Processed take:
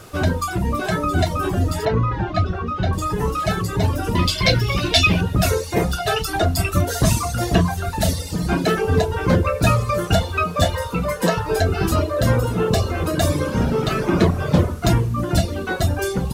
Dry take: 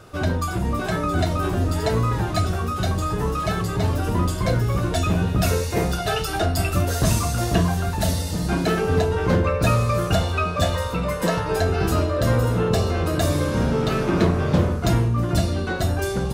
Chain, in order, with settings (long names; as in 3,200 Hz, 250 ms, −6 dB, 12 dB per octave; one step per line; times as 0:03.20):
reverb reduction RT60 1.1 s
0:04.15–0:05.21: flat-topped bell 3,400 Hz +13.5 dB
noise in a band 1,000–14,000 Hz −55 dBFS
0:01.85–0:02.93: high-frequency loss of the air 230 metres
level +4 dB